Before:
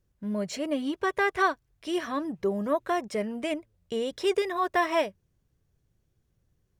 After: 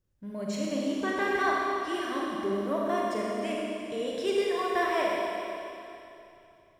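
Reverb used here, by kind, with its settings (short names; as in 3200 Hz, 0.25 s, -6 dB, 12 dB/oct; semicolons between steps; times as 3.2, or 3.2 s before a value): Schroeder reverb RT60 2.9 s, combs from 29 ms, DRR -4 dB; gain -6 dB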